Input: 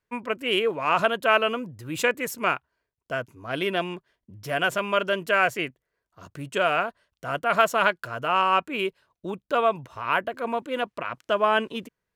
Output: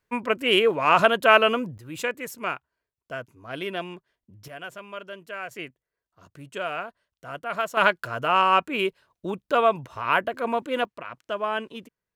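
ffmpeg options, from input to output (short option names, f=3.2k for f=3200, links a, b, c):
-af "asetnsamples=n=441:p=0,asendcmd='1.78 volume volume -5dB;4.48 volume volume -14dB;5.51 volume volume -7.5dB;7.77 volume volume 2dB;10.85 volume volume -6dB',volume=4dB"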